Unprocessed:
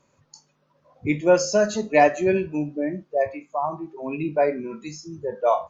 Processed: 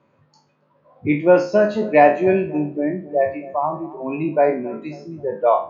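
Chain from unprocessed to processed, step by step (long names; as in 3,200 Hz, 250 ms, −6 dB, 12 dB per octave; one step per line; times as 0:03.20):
peak hold with a decay on every bin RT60 0.35 s
high-pass filter 110 Hz
high-frequency loss of the air 340 metres
feedback echo with a low-pass in the loop 269 ms, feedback 55%, low-pass 890 Hz, level −17 dB
level +4.5 dB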